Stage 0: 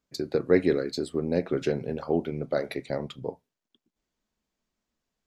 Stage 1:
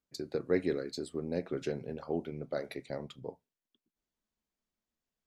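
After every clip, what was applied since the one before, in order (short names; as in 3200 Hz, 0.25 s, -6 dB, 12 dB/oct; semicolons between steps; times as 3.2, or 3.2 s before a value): dynamic EQ 8200 Hz, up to +4 dB, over -53 dBFS, Q 0.83; gain -8.5 dB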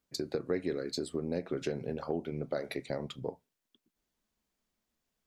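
compressor 3:1, threshold -38 dBFS, peak gain reduction 11.5 dB; gain +6.5 dB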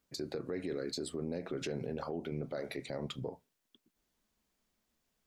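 limiter -31.5 dBFS, peak gain reduction 11.5 dB; gain +3 dB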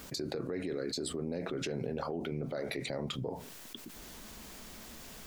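fast leveller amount 70%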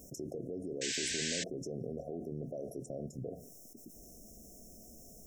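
brick-wall FIR band-stop 750–5200 Hz; painted sound noise, 0.81–1.44, 1500–8200 Hz -33 dBFS; gain -4 dB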